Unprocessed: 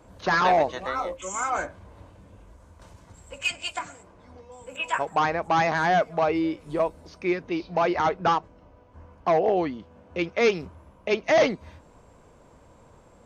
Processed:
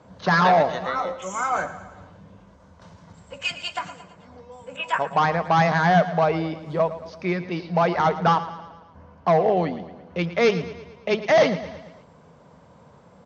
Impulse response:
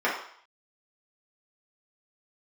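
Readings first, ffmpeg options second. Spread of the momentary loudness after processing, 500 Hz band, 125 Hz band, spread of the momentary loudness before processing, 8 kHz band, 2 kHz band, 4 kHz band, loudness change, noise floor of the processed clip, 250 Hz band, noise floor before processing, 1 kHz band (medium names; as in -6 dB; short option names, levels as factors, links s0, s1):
16 LU, +2.5 dB, +9.5 dB, 13 LU, no reading, +2.0 dB, +2.0 dB, +2.5 dB, -52 dBFS, +3.0 dB, -54 dBFS, +3.0 dB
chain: -af "highpass=100,equalizer=f=170:t=q:w=4:g=9,equalizer=f=330:t=q:w=4:g=-7,equalizer=f=2500:t=q:w=4:g=-4,lowpass=f=6100:w=0.5412,lowpass=f=6100:w=1.3066,aecho=1:1:112|224|336|448|560:0.2|0.108|0.0582|0.0314|0.017,volume=1.41"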